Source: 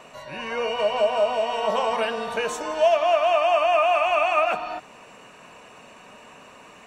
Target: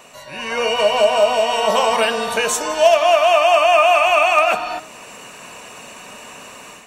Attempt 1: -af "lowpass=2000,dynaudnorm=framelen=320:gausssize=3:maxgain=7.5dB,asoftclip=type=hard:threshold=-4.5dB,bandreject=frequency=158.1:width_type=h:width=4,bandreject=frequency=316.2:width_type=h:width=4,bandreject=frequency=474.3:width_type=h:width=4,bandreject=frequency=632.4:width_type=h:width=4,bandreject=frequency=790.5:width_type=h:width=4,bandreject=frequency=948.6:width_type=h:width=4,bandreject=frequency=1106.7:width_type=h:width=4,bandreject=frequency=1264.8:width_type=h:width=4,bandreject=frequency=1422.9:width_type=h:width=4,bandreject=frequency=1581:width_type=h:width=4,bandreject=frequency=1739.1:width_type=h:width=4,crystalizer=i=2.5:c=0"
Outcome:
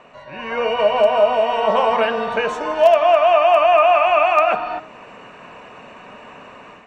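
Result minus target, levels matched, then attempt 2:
2,000 Hz band −3.5 dB
-af "dynaudnorm=framelen=320:gausssize=3:maxgain=7.5dB,asoftclip=type=hard:threshold=-4.5dB,bandreject=frequency=158.1:width_type=h:width=4,bandreject=frequency=316.2:width_type=h:width=4,bandreject=frequency=474.3:width_type=h:width=4,bandreject=frequency=632.4:width_type=h:width=4,bandreject=frequency=790.5:width_type=h:width=4,bandreject=frequency=948.6:width_type=h:width=4,bandreject=frequency=1106.7:width_type=h:width=4,bandreject=frequency=1264.8:width_type=h:width=4,bandreject=frequency=1422.9:width_type=h:width=4,bandreject=frequency=1581:width_type=h:width=4,bandreject=frequency=1739.1:width_type=h:width=4,crystalizer=i=2.5:c=0"

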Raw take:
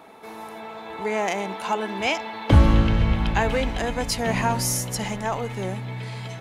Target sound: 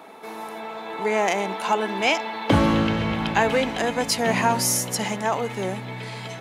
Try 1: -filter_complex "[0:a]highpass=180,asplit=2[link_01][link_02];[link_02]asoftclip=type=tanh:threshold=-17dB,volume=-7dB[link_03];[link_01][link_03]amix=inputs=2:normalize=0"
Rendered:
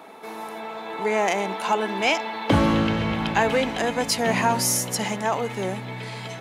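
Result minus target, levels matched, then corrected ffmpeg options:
soft clipping: distortion +15 dB
-filter_complex "[0:a]highpass=180,asplit=2[link_01][link_02];[link_02]asoftclip=type=tanh:threshold=-7dB,volume=-7dB[link_03];[link_01][link_03]amix=inputs=2:normalize=0"

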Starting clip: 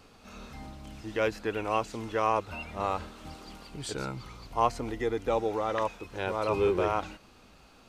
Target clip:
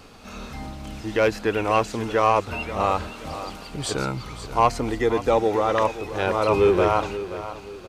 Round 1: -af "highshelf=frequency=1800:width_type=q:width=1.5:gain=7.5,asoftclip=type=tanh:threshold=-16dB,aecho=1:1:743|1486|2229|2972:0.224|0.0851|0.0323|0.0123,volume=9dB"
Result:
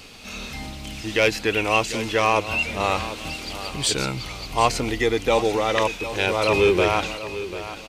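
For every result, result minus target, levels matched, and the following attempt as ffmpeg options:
echo 214 ms late; 4,000 Hz band +8.0 dB
-af "highshelf=frequency=1800:width_type=q:width=1.5:gain=7.5,asoftclip=type=tanh:threshold=-16dB,aecho=1:1:529|1058|1587|2116:0.224|0.0851|0.0323|0.0123,volume=9dB"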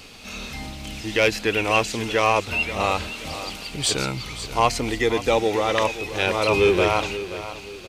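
4,000 Hz band +8.0 dB
-af "asoftclip=type=tanh:threshold=-16dB,aecho=1:1:529|1058|1587|2116:0.224|0.0851|0.0323|0.0123,volume=9dB"

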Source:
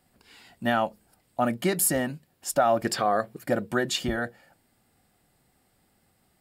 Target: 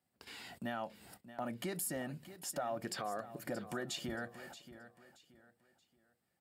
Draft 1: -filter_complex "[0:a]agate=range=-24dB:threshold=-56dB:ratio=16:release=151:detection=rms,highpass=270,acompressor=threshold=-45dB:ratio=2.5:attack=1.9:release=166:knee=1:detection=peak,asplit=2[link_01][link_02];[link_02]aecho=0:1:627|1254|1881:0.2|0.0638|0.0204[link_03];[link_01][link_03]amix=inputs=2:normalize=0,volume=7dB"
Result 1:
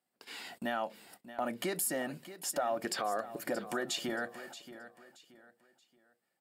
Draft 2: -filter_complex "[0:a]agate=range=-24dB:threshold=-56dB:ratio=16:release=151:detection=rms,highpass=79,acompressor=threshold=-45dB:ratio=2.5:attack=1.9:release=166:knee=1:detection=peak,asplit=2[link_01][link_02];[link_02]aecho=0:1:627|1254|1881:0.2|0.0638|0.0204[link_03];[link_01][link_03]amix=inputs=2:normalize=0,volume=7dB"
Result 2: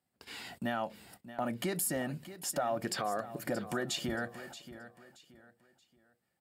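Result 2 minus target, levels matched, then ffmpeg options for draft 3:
downward compressor: peak gain reduction −5.5 dB
-filter_complex "[0:a]agate=range=-24dB:threshold=-56dB:ratio=16:release=151:detection=rms,highpass=79,acompressor=threshold=-54.5dB:ratio=2.5:attack=1.9:release=166:knee=1:detection=peak,asplit=2[link_01][link_02];[link_02]aecho=0:1:627|1254|1881:0.2|0.0638|0.0204[link_03];[link_01][link_03]amix=inputs=2:normalize=0,volume=7dB"

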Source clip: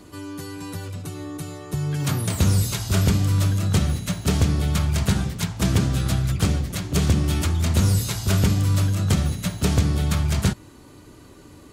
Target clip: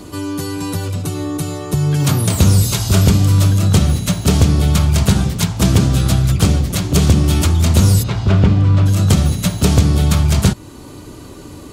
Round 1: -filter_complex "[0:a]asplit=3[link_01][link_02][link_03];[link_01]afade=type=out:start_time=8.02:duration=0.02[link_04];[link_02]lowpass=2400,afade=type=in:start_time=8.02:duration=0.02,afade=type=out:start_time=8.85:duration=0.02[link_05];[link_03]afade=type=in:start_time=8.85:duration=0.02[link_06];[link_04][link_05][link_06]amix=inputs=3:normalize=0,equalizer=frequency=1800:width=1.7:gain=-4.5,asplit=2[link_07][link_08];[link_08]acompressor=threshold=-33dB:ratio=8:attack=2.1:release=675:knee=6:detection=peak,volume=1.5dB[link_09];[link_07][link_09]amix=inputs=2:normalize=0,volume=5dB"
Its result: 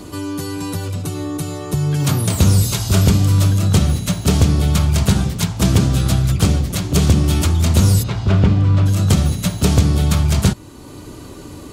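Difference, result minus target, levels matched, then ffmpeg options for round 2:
downward compressor: peak gain reduction +8.5 dB
-filter_complex "[0:a]asplit=3[link_01][link_02][link_03];[link_01]afade=type=out:start_time=8.02:duration=0.02[link_04];[link_02]lowpass=2400,afade=type=in:start_time=8.02:duration=0.02,afade=type=out:start_time=8.85:duration=0.02[link_05];[link_03]afade=type=in:start_time=8.85:duration=0.02[link_06];[link_04][link_05][link_06]amix=inputs=3:normalize=0,equalizer=frequency=1800:width=1.7:gain=-4.5,asplit=2[link_07][link_08];[link_08]acompressor=threshold=-23.5dB:ratio=8:attack=2.1:release=675:knee=6:detection=peak,volume=1.5dB[link_09];[link_07][link_09]amix=inputs=2:normalize=0,volume=5dB"

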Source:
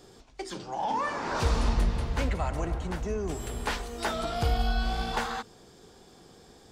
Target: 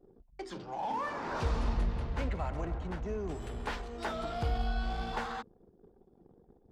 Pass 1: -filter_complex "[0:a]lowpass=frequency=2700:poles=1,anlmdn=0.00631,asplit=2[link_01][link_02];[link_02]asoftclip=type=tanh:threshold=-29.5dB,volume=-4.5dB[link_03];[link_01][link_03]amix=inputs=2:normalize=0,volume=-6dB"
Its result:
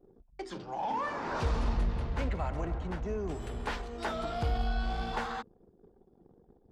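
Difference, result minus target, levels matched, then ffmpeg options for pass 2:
soft clipping: distortion −5 dB
-filter_complex "[0:a]lowpass=frequency=2700:poles=1,anlmdn=0.00631,asplit=2[link_01][link_02];[link_02]asoftclip=type=tanh:threshold=-40.5dB,volume=-4.5dB[link_03];[link_01][link_03]amix=inputs=2:normalize=0,volume=-6dB"

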